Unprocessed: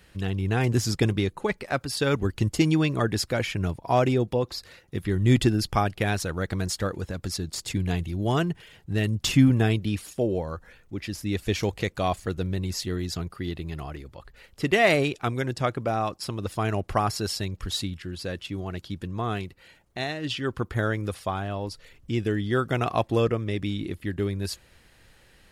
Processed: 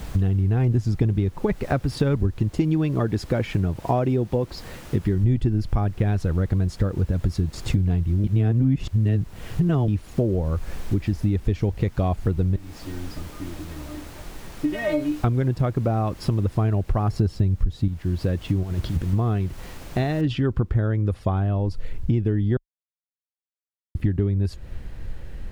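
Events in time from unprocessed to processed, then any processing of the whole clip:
2.37–5.24 low shelf 130 Hz -11 dB
8.24–9.88 reverse
12.56–15.24 metallic resonator 300 Hz, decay 0.25 s, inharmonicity 0.002
17.11–17.88 low shelf 490 Hz +8.5 dB
18.63–19.13 negative-ratio compressor -41 dBFS
20.21 noise floor step -45 dB -63 dB
22.57–23.95 mute
whole clip: tilt -4 dB/oct; compressor 6:1, threshold -27 dBFS; gain +8 dB

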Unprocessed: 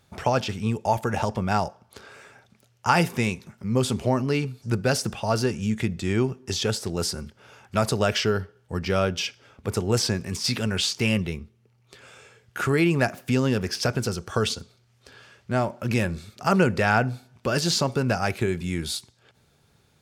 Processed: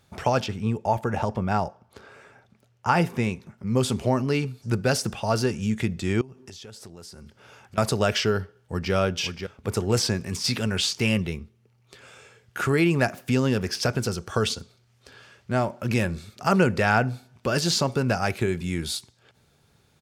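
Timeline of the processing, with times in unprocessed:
0.46–3.67 high shelf 2600 Hz -9 dB
6.21–7.78 compressor 8:1, threshold -40 dBFS
8.41–8.93 echo throw 0.53 s, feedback 35%, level -7.5 dB

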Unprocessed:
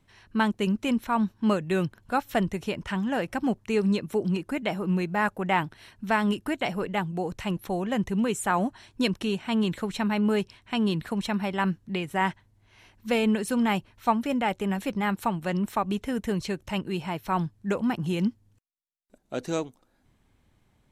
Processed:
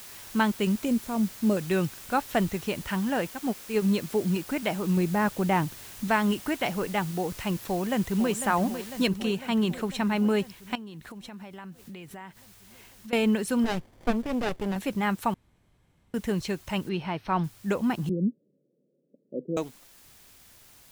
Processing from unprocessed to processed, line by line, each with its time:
0.85–1.57 band shelf 1800 Hz -12.5 dB 2.5 oct
3.29–3.82 upward expander 2.5:1, over -36 dBFS
4.97–6.08 tilt shelf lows +5.5 dB, about 660 Hz
7.59–8.31 echo throw 0.5 s, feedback 70%, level -9.5 dB
9.07 noise floor step -45 dB -55 dB
10.75–13.13 compressor, threshold -40 dBFS
13.64–14.76 running maximum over 33 samples
15.34–16.14 room tone
16.89–17.44 polynomial smoothing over 15 samples
18.09–19.57 Chebyshev band-pass 140–560 Hz, order 5

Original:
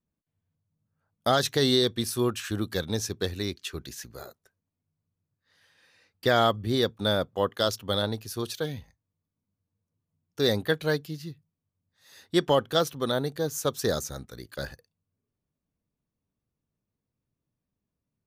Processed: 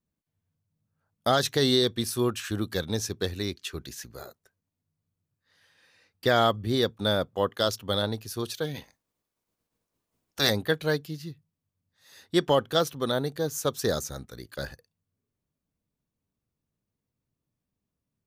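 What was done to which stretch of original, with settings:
8.74–10.49 spectral limiter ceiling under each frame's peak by 21 dB

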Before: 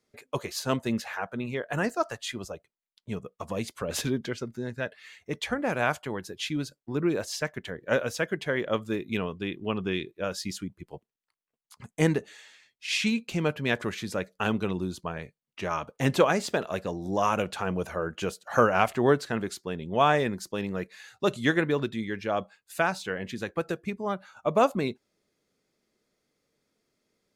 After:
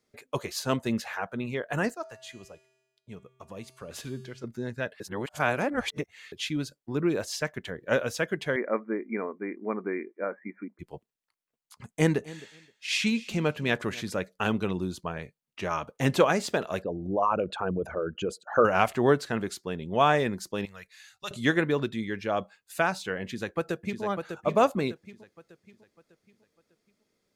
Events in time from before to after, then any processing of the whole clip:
1.94–4.44 resonator 130 Hz, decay 1.2 s, harmonics odd, mix 70%
5–6.32 reverse
8.56–10.79 brick-wall FIR band-pass 200–2400 Hz
11.89–14.1 feedback echo 0.262 s, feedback 17%, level -19.5 dB
16.82–18.65 formant sharpening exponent 2
20.65–21.31 passive tone stack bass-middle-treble 10-0-10
23.23–24.03 echo throw 0.6 s, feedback 40%, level -6.5 dB

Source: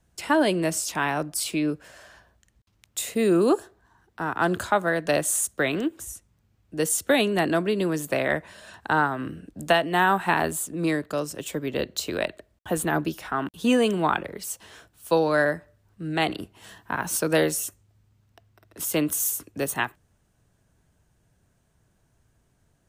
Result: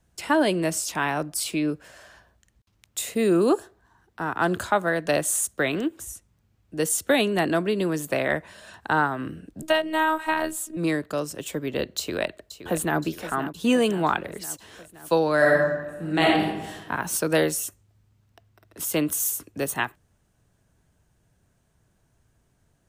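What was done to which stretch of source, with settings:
9.62–10.77 robotiser 315 Hz
11.98–13 echo throw 0.52 s, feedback 65%, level -12 dB
15.37–16.79 reverb throw, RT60 1.1 s, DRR -3.5 dB

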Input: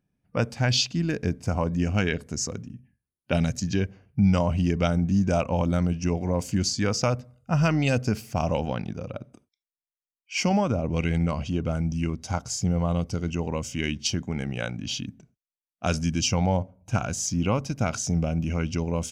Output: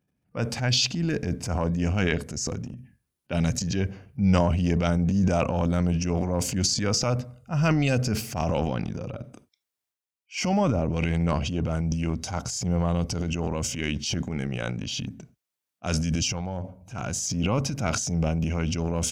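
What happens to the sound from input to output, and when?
16.22–16.99 compressor, threshold -28 dBFS
whole clip: HPF 42 Hz; transient shaper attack -7 dB, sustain +9 dB

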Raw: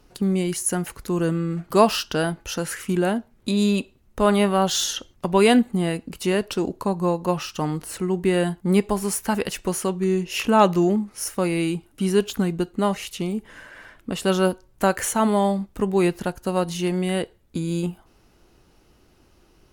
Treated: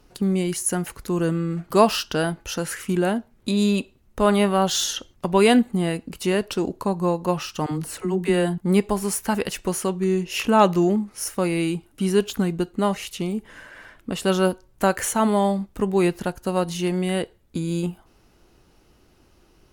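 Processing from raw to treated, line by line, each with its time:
7.66–8.58 dispersion lows, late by 56 ms, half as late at 330 Hz

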